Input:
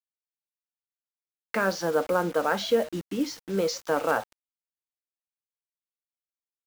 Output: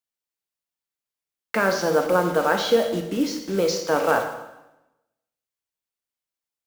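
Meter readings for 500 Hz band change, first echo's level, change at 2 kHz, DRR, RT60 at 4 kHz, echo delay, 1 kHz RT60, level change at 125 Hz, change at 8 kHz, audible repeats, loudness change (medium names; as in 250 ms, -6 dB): +5.0 dB, no echo, +5.0 dB, 5.0 dB, 0.90 s, no echo, 0.90 s, +5.0 dB, +5.0 dB, no echo, +5.0 dB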